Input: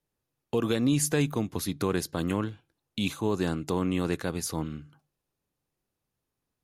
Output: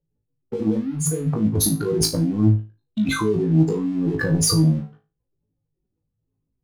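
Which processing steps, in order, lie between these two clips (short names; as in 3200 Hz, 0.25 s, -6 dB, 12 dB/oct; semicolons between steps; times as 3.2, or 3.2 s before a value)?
spectral contrast raised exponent 2.7; negative-ratio compressor -34 dBFS, ratio -1; sample leveller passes 2; flutter echo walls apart 3.2 m, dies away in 0.29 s; gain +4.5 dB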